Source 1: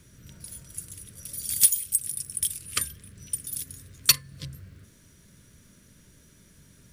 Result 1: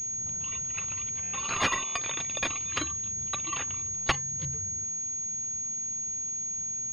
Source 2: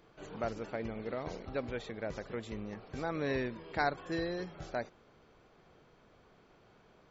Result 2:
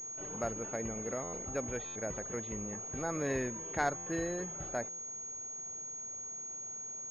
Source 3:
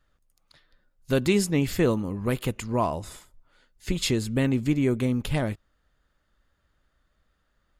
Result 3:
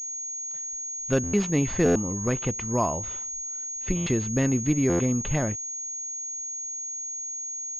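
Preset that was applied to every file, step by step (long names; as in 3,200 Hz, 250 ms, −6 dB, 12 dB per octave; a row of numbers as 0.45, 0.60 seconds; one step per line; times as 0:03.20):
wrap-around overflow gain 9 dB
buffer that repeats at 0:01.23/0:01.85/0:03.96/0:04.89, samples 512
switching amplifier with a slow clock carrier 6,600 Hz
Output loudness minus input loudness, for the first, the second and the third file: −4.5, +1.0, −1.0 LU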